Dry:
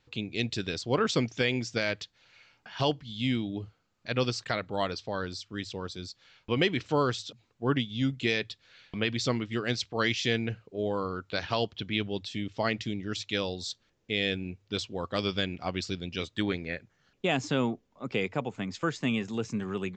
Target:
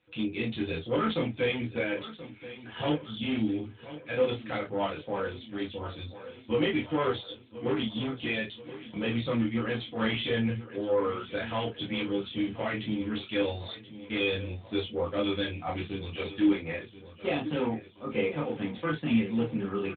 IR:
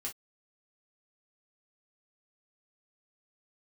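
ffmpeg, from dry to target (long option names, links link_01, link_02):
-filter_complex "[0:a]acontrast=81,aresample=16000,asoftclip=type=hard:threshold=-18dB,aresample=44100,flanger=delay=22.5:depth=5.2:speed=0.14,aecho=1:1:1029|2058|3087|4116|5145:0.178|0.0942|0.05|0.0265|0.014[link_01];[1:a]atrim=start_sample=2205,asetrate=48510,aresample=44100[link_02];[link_01][link_02]afir=irnorm=-1:irlink=0" -ar 8000 -c:a libopencore_amrnb -b:a 12200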